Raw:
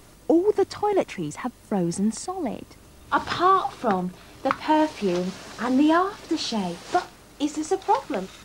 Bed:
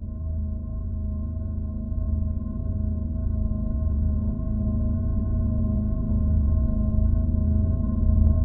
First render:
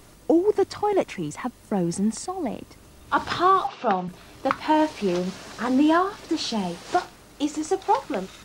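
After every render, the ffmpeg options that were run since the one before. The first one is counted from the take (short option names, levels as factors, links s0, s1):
-filter_complex "[0:a]asettb=1/sr,asplit=3[s0][s1][s2];[s0]atrim=end=3.674[s3];[s1]atrim=start=3.67:end=4.08,asetpts=PTS-STARTPTS,afade=t=in:d=0.004:c=qsin,afade=t=out:st=0.406:d=0.004:c=qsin,highpass=190,equalizer=f=310:t=q:w=4:g=-8,equalizer=f=810:t=q:w=4:g=3,equalizer=f=2800:t=q:w=4:g=7,lowpass=f=5800:w=0.5412,lowpass=f=5800:w=1.3066[s4];[s2]atrim=start=4.076[s5];[s3][s4]acrossfade=d=0.004:c1=hsin:c2=qsin[s6];[s6][s5]acrossfade=d=0.004:c1=qsin:c2=hsin"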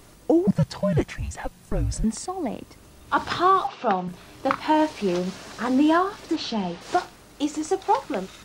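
-filter_complex "[0:a]asettb=1/sr,asplit=3[s0][s1][s2];[s0]atrim=end=0.474[s3];[s1]atrim=start=0.47:end=2.04,asetpts=PTS-STARTPTS,afade=t=in:d=0.004:c=qsin,afade=t=out:st=1.566:d=0.004:c=qsin,afreqshift=-230[s4];[s2]atrim=start=2.036[s5];[s3][s4]acrossfade=d=0.004:c1=hsin:c2=qsin[s6];[s6][s5]acrossfade=d=0.004:c1=qsin:c2=hsin,asettb=1/sr,asplit=3[s7][s8][s9];[s7]atrim=end=4.034[s10];[s8]atrim=start=4.03:end=4.7,asetpts=PTS-STARTPTS,afade=t=in:d=0.004:c=qsin,afade=t=out:st=0.666:d=0.004:c=qsin,asplit=2[s11][s12];[s12]adelay=33,volume=0.355[s13];[s11][s13]amix=inputs=2:normalize=0,atrim=end_sample=29547[s14];[s9]atrim=start=4.696[s15];[s10][s14]acrossfade=d=0.004:c1=hsin:c2=qsin[s16];[s16][s15]acrossfade=d=0.004:c1=qsin:c2=hsin,asplit=3[s17][s18][s19];[s17]afade=t=out:st=6.35:d=0.02[s20];[s18]lowpass=4400,afade=t=in:st=6.35:d=0.02,afade=t=out:st=6.8:d=0.02[s21];[s19]afade=t=in:st=6.8:d=0.02[s22];[s20][s21][s22]amix=inputs=3:normalize=0"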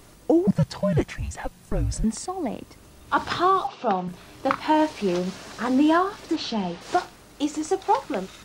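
-filter_complex "[0:a]asettb=1/sr,asplit=3[s0][s1][s2];[s0]atrim=end=3.454[s3];[s1]atrim=start=3.45:end=3.95,asetpts=PTS-STARTPTS,afade=t=in:d=0.004:c=qsin,afade=t=out:st=0.496:d=0.004:c=qsin,equalizer=f=1800:w=1.3:g=-5.5[s4];[s2]atrim=start=3.946[s5];[s3][s4]acrossfade=d=0.004:c1=hsin:c2=qsin[s6];[s6][s5]acrossfade=d=0.004:c1=qsin:c2=hsin"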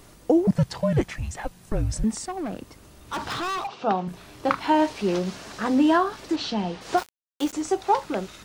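-filter_complex "[0:a]asettb=1/sr,asplit=3[s0][s1][s2];[s0]atrim=end=2.204[s3];[s1]atrim=start=2.2:end=3.68,asetpts=PTS-STARTPTS,afade=t=in:d=0.004:c=qsin,afade=t=out:st=1.476:d=0.004:c=qsin,asoftclip=type=hard:threshold=0.0473[s4];[s2]atrim=start=3.676[s5];[s3][s4]acrossfade=d=0.004:c1=hsin:c2=qsin[s6];[s6][s5]acrossfade=d=0.004:c1=qsin:c2=hsin,asettb=1/sr,asplit=3[s7][s8][s9];[s7]atrim=end=6.974[s10];[s8]atrim=start=6.97:end=7.53,asetpts=PTS-STARTPTS,afade=t=in:d=0.004:c=qsin,afade=t=out:st=0.556:d=0.004:c=qsin,aeval=exprs='val(0)*gte(abs(val(0)),0.0251)':c=same[s11];[s9]atrim=start=7.526[s12];[s10][s11]acrossfade=d=0.004:c1=hsin:c2=qsin[s13];[s13][s12]acrossfade=d=0.004:c1=qsin:c2=hsin"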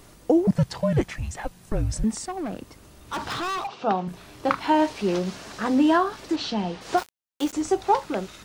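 -filter_complex "[0:a]asettb=1/sr,asplit=3[s0][s1][s2];[s0]atrim=end=7.564[s3];[s1]atrim=start=7.56:end=7.97,asetpts=PTS-STARTPTS,afade=t=in:d=0.004:c=qsin,afade=t=out:st=0.406:d=0.004:c=qsin,lowshelf=f=230:g=6[s4];[s2]atrim=start=7.966[s5];[s3][s4]acrossfade=d=0.004:c1=hsin:c2=qsin[s6];[s6][s5]acrossfade=d=0.004:c1=qsin:c2=hsin"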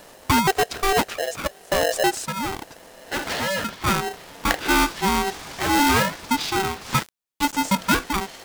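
-filter_complex "[0:a]asplit=2[s0][s1];[s1]aeval=exprs='(mod(6.31*val(0)+1,2)-1)/6.31':c=same,volume=0.473[s2];[s0][s2]amix=inputs=2:normalize=0,aeval=exprs='val(0)*sgn(sin(2*PI*580*n/s))':c=same"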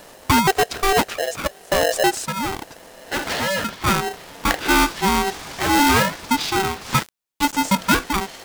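-af "volume=1.33,alimiter=limit=0.708:level=0:latency=1"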